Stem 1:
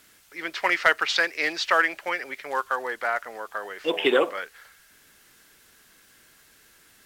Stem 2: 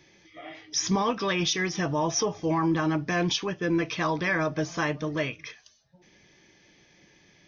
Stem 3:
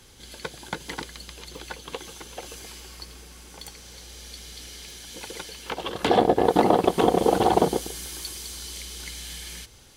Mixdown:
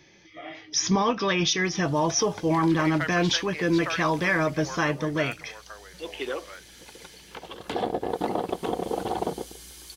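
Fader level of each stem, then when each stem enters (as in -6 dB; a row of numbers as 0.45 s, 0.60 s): -11.5 dB, +2.5 dB, -9.0 dB; 2.15 s, 0.00 s, 1.65 s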